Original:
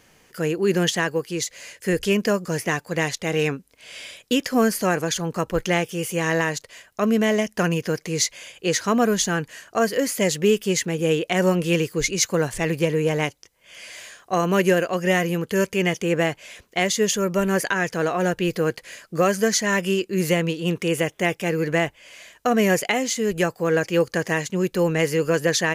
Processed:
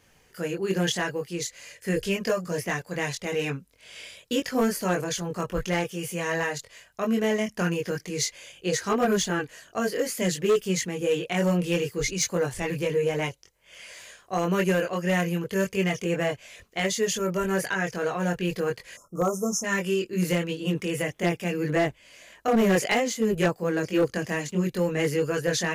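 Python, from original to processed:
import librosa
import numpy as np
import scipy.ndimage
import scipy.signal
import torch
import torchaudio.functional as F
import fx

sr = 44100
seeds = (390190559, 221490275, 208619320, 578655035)

y = fx.chorus_voices(x, sr, voices=6, hz=0.91, base_ms=22, depth_ms=1.3, mix_pct=45)
y = fx.spec_erase(y, sr, start_s=18.97, length_s=0.67, low_hz=1400.0, high_hz=5200.0)
y = np.clip(10.0 ** (14.5 / 20.0) * y, -1.0, 1.0) / 10.0 ** (14.5 / 20.0)
y = F.gain(torch.from_numpy(y), -2.0).numpy()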